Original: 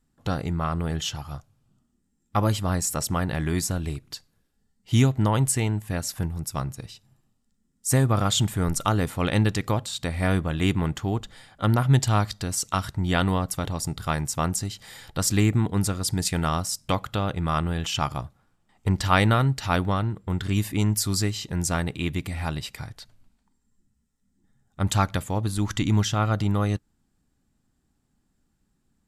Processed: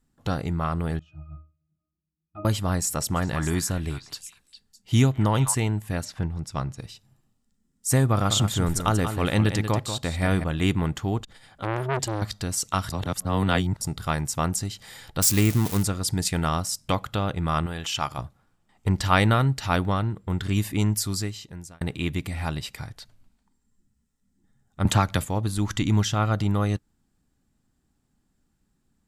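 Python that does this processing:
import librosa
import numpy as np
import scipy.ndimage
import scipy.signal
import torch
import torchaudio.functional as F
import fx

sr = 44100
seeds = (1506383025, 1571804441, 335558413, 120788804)

y = fx.octave_resonator(x, sr, note='D#', decay_s=0.3, at=(0.99, 2.45))
y = fx.echo_stepped(y, sr, ms=203, hz=1200.0, octaves=1.4, feedback_pct=70, wet_db=-5.0, at=(3.15, 5.53), fade=0.02)
y = fx.lowpass(y, sr, hz=fx.line((6.04, 4000.0), (6.77, 6700.0)), slope=12, at=(6.04, 6.77), fade=0.02)
y = fx.echo_single(y, sr, ms=186, db=-8.5, at=(8.12, 10.44))
y = fx.transformer_sat(y, sr, knee_hz=1600.0, at=(11.23, 12.22))
y = fx.crossing_spikes(y, sr, level_db=-17.5, at=(15.21, 15.83))
y = fx.low_shelf(y, sr, hz=370.0, db=-8.0, at=(17.66, 18.18))
y = fx.band_squash(y, sr, depth_pct=100, at=(24.85, 25.25))
y = fx.edit(y, sr, fx.reverse_span(start_s=12.9, length_s=0.91),
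    fx.fade_out_span(start_s=20.85, length_s=0.96), tone=tone)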